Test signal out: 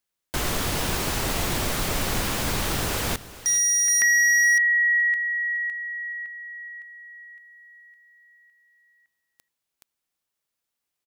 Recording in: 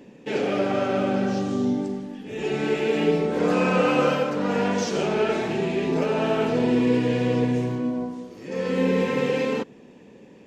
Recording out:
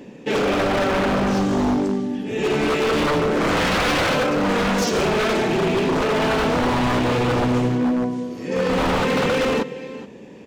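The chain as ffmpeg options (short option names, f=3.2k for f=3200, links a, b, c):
-af "aecho=1:1:423:0.15,aeval=exprs='0.0841*(abs(mod(val(0)/0.0841+3,4)-2)-1)':c=same,volume=7dB"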